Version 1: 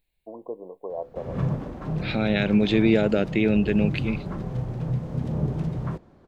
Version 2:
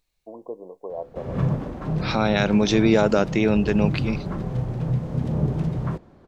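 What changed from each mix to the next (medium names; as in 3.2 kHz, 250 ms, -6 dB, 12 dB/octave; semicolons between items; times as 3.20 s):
second voice: remove static phaser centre 2.5 kHz, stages 4; background +3.0 dB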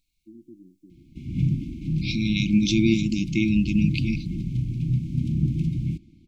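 master: add brick-wall FIR band-stop 350–2100 Hz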